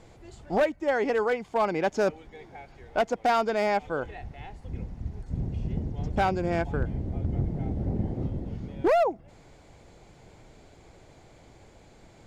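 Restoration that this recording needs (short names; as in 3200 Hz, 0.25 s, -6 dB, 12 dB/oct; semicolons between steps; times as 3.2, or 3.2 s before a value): clip repair -18 dBFS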